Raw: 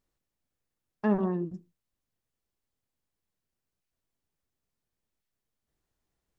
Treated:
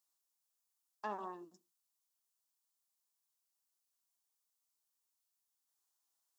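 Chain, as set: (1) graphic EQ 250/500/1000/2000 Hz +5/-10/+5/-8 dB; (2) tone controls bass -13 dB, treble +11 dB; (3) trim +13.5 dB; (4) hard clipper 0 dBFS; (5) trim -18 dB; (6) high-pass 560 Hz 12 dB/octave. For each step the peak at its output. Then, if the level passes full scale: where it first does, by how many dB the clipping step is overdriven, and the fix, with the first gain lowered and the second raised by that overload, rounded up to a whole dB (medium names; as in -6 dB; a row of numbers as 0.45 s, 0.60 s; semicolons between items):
-15.0 dBFS, -19.0 dBFS, -5.5 dBFS, -5.5 dBFS, -23.5 dBFS, -29.0 dBFS; nothing clips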